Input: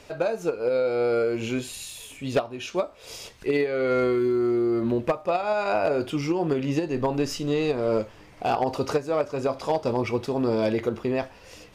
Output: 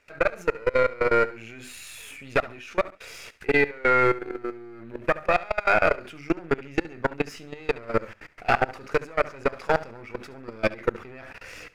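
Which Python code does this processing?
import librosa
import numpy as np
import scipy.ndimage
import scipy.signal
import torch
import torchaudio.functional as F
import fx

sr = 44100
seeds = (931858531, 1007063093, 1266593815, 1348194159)

p1 = np.where(x < 0.0, 10.0 ** (-7.0 / 20.0) * x, x)
p2 = fx.band_shelf(p1, sr, hz=1800.0, db=10.5, octaves=1.2)
p3 = fx.hum_notches(p2, sr, base_hz=50, count=6)
p4 = fx.level_steps(p3, sr, step_db=24)
p5 = p4 + fx.echo_feedback(p4, sr, ms=70, feedback_pct=26, wet_db=-18.0, dry=0)
y = p5 * librosa.db_to_amplitude(5.5)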